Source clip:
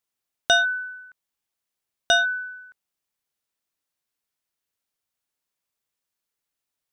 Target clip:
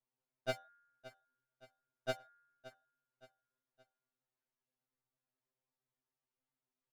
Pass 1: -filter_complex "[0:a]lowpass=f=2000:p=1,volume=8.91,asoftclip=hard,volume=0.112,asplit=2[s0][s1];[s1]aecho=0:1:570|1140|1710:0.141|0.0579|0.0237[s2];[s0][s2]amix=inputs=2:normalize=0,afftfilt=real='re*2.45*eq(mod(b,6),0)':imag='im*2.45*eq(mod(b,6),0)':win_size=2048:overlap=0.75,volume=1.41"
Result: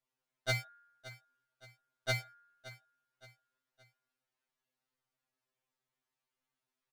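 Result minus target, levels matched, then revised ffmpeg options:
500 Hz band -7.5 dB
-filter_complex "[0:a]lowpass=f=550:p=1,volume=8.91,asoftclip=hard,volume=0.112,asplit=2[s0][s1];[s1]aecho=0:1:570|1140|1710:0.141|0.0579|0.0237[s2];[s0][s2]amix=inputs=2:normalize=0,afftfilt=real='re*2.45*eq(mod(b,6),0)':imag='im*2.45*eq(mod(b,6),0)':win_size=2048:overlap=0.75,volume=1.41"

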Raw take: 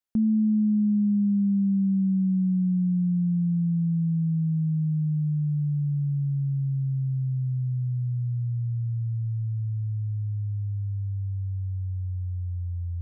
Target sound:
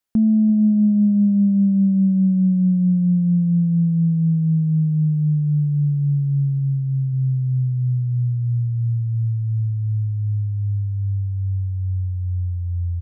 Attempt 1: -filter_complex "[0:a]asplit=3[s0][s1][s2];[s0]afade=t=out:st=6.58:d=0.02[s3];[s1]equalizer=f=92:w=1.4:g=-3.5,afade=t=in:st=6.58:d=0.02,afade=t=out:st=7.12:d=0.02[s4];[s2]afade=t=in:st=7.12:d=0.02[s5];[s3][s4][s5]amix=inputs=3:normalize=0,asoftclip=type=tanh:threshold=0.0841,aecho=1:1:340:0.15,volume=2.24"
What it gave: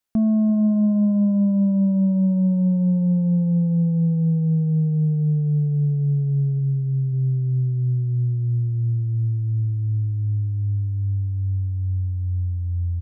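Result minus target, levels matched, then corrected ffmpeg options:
saturation: distortion +16 dB
-filter_complex "[0:a]asplit=3[s0][s1][s2];[s0]afade=t=out:st=6.58:d=0.02[s3];[s1]equalizer=f=92:w=1.4:g=-3.5,afade=t=in:st=6.58:d=0.02,afade=t=out:st=7.12:d=0.02[s4];[s2]afade=t=in:st=7.12:d=0.02[s5];[s3][s4][s5]amix=inputs=3:normalize=0,asoftclip=type=tanh:threshold=0.251,aecho=1:1:340:0.15,volume=2.24"

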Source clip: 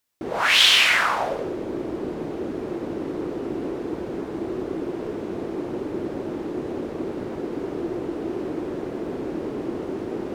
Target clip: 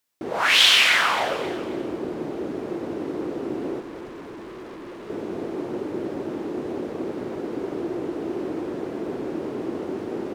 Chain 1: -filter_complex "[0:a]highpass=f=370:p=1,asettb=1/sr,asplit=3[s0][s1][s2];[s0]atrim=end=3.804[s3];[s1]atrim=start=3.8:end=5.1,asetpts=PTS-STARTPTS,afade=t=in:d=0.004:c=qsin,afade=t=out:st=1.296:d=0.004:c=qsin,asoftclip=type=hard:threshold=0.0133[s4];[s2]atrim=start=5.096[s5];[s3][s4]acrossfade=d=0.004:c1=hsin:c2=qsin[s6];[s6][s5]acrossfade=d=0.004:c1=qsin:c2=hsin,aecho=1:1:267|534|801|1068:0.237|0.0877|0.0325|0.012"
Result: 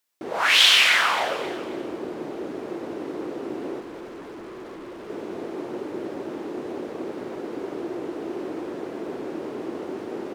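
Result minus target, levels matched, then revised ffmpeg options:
125 Hz band -6.0 dB
-filter_complex "[0:a]highpass=f=120:p=1,asettb=1/sr,asplit=3[s0][s1][s2];[s0]atrim=end=3.804[s3];[s1]atrim=start=3.8:end=5.1,asetpts=PTS-STARTPTS,afade=t=in:d=0.004:c=qsin,afade=t=out:st=1.296:d=0.004:c=qsin,asoftclip=type=hard:threshold=0.0133[s4];[s2]atrim=start=5.096[s5];[s3][s4]acrossfade=d=0.004:c1=hsin:c2=qsin[s6];[s6][s5]acrossfade=d=0.004:c1=qsin:c2=hsin,aecho=1:1:267|534|801|1068:0.237|0.0877|0.0325|0.012"

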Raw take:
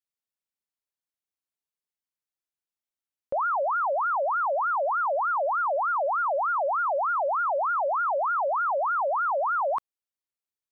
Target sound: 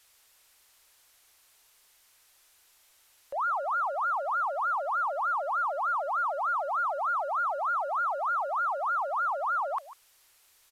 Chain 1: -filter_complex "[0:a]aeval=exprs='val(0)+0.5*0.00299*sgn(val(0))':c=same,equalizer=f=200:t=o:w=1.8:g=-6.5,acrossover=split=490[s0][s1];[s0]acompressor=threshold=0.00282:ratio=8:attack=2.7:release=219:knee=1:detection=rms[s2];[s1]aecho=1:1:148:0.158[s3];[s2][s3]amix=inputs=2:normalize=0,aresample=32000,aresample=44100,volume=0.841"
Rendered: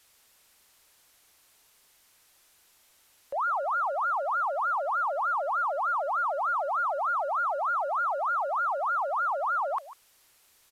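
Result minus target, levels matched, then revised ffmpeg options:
250 Hz band +3.0 dB
-filter_complex "[0:a]aeval=exprs='val(0)+0.5*0.00299*sgn(val(0))':c=same,equalizer=f=200:t=o:w=1.8:g=-16,acrossover=split=490[s0][s1];[s0]acompressor=threshold=0.00282:ratio=8:attack=2.7:release=219:knee=1:detection=rms[s2];[s1]aecho=1:1:148:0.158[s3];[s2][s3]amix=inputs=2:normalize=0,aresample=32000,aresample=44100,volume=0.841"

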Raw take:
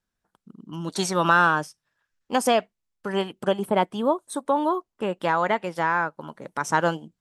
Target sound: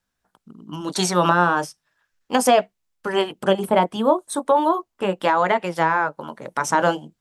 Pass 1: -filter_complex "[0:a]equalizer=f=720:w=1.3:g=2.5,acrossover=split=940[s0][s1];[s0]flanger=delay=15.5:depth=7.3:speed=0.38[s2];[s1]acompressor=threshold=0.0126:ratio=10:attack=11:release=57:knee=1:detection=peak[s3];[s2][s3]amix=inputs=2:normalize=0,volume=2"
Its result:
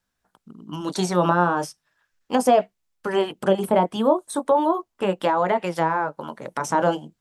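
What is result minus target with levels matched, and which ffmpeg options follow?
compression: peak gain reduction +8.5 dB
-filter_complex "[0:a]equalizer=f=720:w=1.3:g=2.5,acrossover=split=940[s0][s1];[s0]flanger=delay=15.5:depth=7.3:speed=0.38[s2];[s1]acompressor=threshold=0.0376:ratio=10:attack=11:release=57:knee=1:detection=peak[s3];[s2][s3]amix=inputs=2:normalize=0,volume=2"

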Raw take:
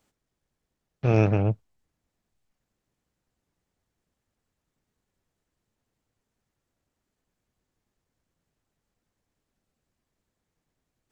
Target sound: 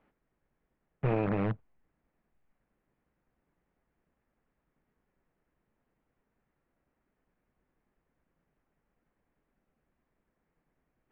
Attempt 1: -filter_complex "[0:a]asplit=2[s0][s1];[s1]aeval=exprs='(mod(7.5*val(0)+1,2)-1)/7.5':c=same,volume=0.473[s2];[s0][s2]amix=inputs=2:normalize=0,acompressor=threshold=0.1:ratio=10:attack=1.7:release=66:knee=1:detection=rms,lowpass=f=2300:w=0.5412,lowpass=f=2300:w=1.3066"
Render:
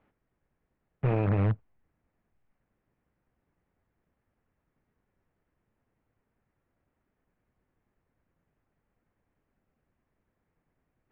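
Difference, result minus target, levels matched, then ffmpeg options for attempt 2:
125 Hz band +3.5 dB
-filter_complex "[0:a]asplit=2[s0][s1];[s1]aeval=exprs='(mod(7.5*val(0)+1,2)-1)/7.5':c=same,volume=0.473[s2];[s0][s2]amix=inputs=2:normalize=0,acompressor=threshold=0.1:ratio=10:attack=1.7:release=66:knee=1:detection=rms,lowpass=f=2300:w=0.5412,lowpass=f=2300:w=1.3066,equalizer=f=95:w=3.7:g=-14.5"

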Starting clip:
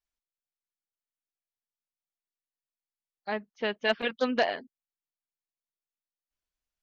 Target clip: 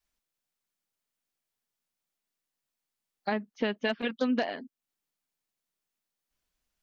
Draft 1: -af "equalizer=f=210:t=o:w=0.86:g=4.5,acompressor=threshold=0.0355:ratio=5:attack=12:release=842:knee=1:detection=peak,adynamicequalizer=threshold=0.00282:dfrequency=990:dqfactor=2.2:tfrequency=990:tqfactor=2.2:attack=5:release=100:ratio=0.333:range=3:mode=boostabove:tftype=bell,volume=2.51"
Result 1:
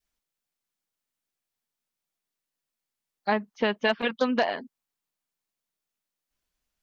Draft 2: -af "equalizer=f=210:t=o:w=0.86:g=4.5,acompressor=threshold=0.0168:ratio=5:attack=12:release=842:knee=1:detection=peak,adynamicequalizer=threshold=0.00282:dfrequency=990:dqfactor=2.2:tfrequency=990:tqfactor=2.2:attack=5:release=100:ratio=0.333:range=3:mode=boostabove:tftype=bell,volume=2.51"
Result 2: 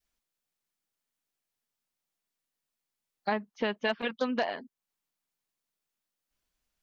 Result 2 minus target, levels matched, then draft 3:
250 Hz band -3.5 dB
-af "equalizer=f=210:t=o:w=0.86:g=4.5,acompressor=threshold=0.0168:ratio=5:attack=12:release=842:knee=1:detection=peak,adynamicequalizer=threshold=0.00282:dfrequency=270:dqfactor=2.2:tfrequency=270:tqfactor=2.2:attack=5:release=100:ratio=0.333:range=3:mode=boostabove:tftype=bell,volume=2.51"

